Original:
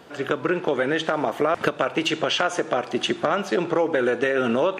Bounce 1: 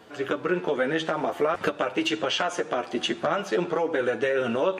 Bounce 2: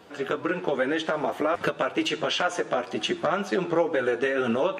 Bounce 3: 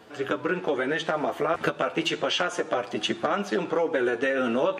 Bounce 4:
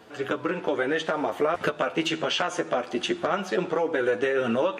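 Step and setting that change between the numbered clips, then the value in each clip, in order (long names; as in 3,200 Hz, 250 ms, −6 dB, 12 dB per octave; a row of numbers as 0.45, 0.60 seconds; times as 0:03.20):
flanger, speed: 0.47, 2, 0.31, 0.21 Hertz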